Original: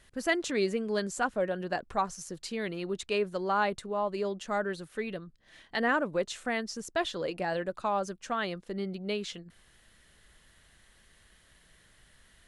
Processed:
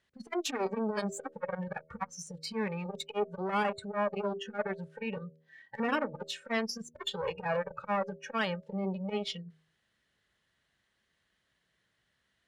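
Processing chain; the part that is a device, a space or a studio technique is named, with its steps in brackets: valve radio (band-pass 93–5900 Hz; valve stage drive 31 dB, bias 0.6; transformer saturation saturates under 540 Hz); spectral noise reduction 19 dB; de-hum 79.37 Hz, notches 8; trim +8.5 dB

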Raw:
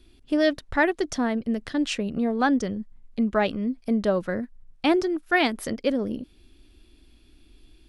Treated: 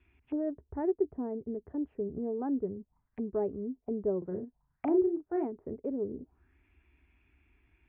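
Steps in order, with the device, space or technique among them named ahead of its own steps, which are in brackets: envelope filter bass rig (touch-sensitive low-pass 410–2700 Hz down, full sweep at -27 dBFS; cabinet simulation 63–2300 Hz, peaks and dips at 69 Hz +9 dB, 220 Hz -7 dB, 320 Hz -7 dB, 520 Hz -10 dB, 920 Hz +6 dB); 4.18–5.45 s: doubling 38 ms -6 dB; trim -8.5 dB

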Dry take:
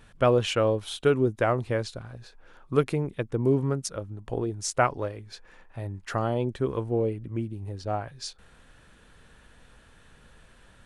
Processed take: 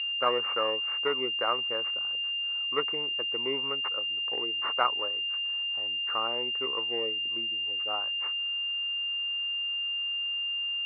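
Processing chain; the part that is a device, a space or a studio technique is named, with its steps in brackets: toy sound module (decimation joined by straight lines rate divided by 6×; class-D stage that switches slowly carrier 2.8 kHz; cabinet simulation 640–3800 Hz, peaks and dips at 660 Hz -8 dB, 1.2 kHz +8 dB, 2.1 kHz +6 dB)

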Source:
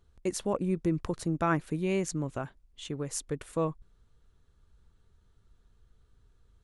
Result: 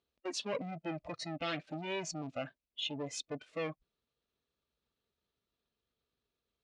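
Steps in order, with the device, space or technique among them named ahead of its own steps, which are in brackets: guitar amplifier (valve stage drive 41 dB, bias 0.65; tone controls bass -10 dB, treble +12 dB; cabinet simulation 85–4600 Hz, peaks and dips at 96 Hz -8 dB, 240 Hz +5 dB, 600 Hz +5 dB, 900 Hz -3 dB, 1.5 kHz -5 dB, 2.5 kHz +6 dB); spectral noise reduction 17 dB; trim +8 dB

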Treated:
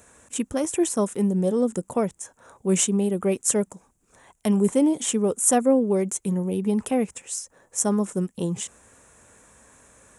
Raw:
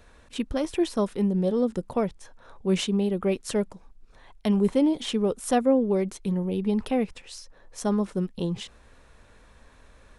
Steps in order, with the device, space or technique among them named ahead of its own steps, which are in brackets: budget condenser microphone (high-pass 100 Hz 12 dB/octave; resonant high shelf 5.7 kHz +9.5 dB, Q 3); trim +2 dB

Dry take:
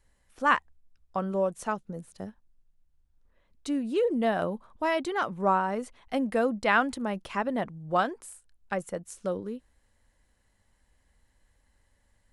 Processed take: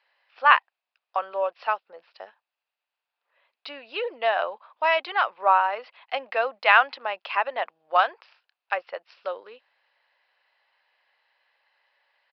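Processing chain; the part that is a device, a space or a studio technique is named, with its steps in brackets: distance through air 61 m; musical greeting card (resampled via 11.025 kHz; high-pass 650 Hz 24 dB/octave; peaking EQ 2.6 kHz +8 dB 0.3 oct); trim +7 dB

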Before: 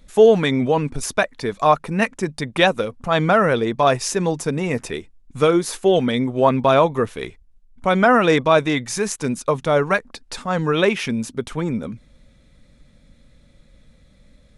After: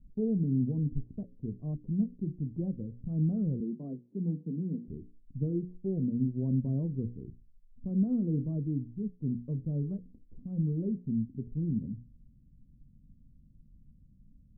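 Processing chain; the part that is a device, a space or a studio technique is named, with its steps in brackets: hum notches 60/120/180/240/300/360/420/480/540 Hz; 3.60–4.88 s: Chebyshev high-pass 160 Hz, order 5; the neighbour's flat through the wall (low-pass 260 Hz 24 dB/octave; peaking EQ 120 Hz +3.5 dB 0.77 oct); trim -6 dB

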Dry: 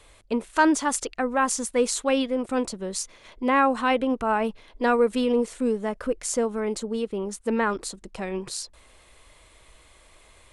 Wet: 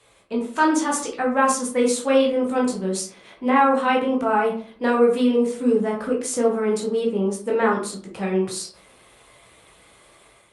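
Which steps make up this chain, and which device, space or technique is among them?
5.51–6.76 s: peaking EQ 540 Hz -4 dB 0.26 oct; far-field microphone of a smart speaker (reverberation RT60 0.45 s, pre-delay 10 ms, DRR -3 dB; high-pass 130 Hz 12 dB/octave; level rider gain up to 6.5 dB; trim -5 dB; Opus 48 kbps 48 kHz)

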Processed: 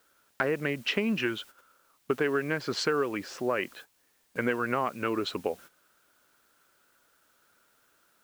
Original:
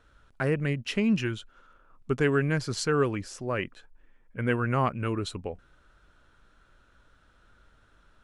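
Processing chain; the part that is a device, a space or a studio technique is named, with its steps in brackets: baby monitor (band-pass 300–3600 Hz; compression, threshold -33 dBFS, peak gain reduction 12 dB; white noise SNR 24 dB; gate -55 dBFS, range -13 dB); trim +8.5 dB

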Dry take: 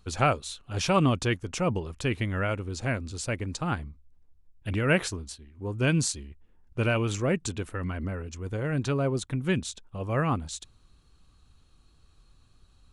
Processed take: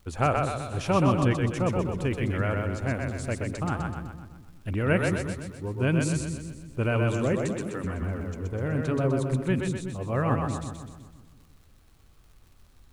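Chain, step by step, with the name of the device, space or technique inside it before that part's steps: 7.33–7.84 s: high-pass 130 Hz 24 dB/octave; peaking EQ 4.9 kHz -10.5 dB 1.9 oct; vinyl LP (crackle 77 per s -48 dBFS; pink noise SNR 40 dB); two-band feedback delay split 350 Hz, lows 173 ms, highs 126 ms, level -3 dB

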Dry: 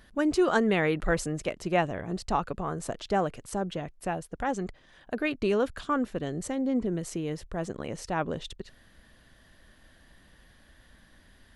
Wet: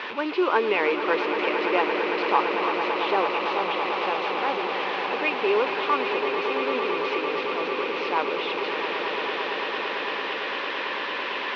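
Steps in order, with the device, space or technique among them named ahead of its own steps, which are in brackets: digital answering machine (band-pass 300–3200 Hz; one-bit delta coder 32 kbps, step -30 dBFS; cabinet simulation 390–3600 Hz, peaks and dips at 420 Hz +6 dB, 680 Hz -7 dB, 990 Hz +9 dB, 1.7 kHz -4 dB, 2.5 kHz +8 dB); echo with a slow build-up 112 ms, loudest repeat 8, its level -11 dB; trim +3 dB

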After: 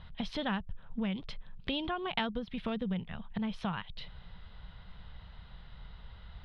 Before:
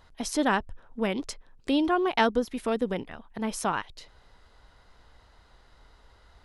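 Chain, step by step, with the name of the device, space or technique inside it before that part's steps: jukebox (low-pass 6.2 kHz 12 dB/octave; resonant low shelf 230 Hz +8.5 dB, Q 3; compression 4:1, threshold -34 dBFS, peak gain reduction 13.5 dB); resonant high shelf 5 kHz -14 dB, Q 3

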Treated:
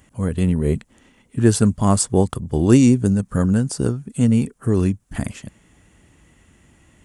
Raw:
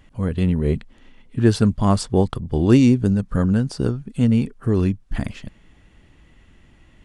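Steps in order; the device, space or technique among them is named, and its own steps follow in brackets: budget condenser microphone (high-pass 62 Hz; resonant high shelf 5.8 kHz +9.5 dB, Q 1.5); trim +1 dB

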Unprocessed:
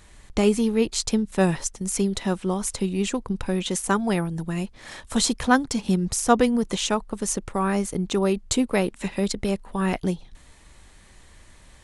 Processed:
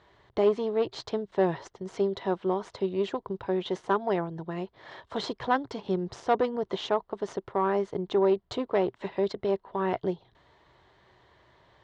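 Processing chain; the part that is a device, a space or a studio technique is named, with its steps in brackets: guitar amplifier (valve stage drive 15 dB, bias 0.5; tone controls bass -5 dB, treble +7 dB; cabinet simulation 82–3400 Hz, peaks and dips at 120 Hz +8 dB, 230 Hz -7 dB, 390 Hz +8 dB, 660 Hz +6 dB, 980 Hz +6 dB, 2.5 kHz -9 dB); trim -3.5 dB

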